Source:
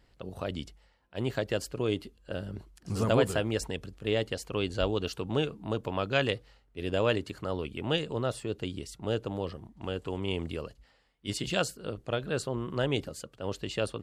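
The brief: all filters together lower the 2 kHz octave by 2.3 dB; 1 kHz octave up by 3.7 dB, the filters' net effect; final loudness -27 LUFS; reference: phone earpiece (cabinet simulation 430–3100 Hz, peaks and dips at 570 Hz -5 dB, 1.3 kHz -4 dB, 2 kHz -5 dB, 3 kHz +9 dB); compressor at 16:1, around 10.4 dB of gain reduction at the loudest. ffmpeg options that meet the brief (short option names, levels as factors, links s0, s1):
-af "equalizer=f=1000:t=o:g=9,equalizer=f=2000:t=o:g=-7,acompressor=threshold=0.0447:ratio=16,highpass=430,equalizer=f=570:t=q:w=4:g=-5,equalizer=f=1300:t=q:w=4:g=-4,equalizer=f=2000:t=q:w=4:g=-5,equalizer=f=3000:t=q:w=4:g=9,lowpass=f=3100:w=0.5412,lowpass=f=3100:w=1.3066,volume=4.22"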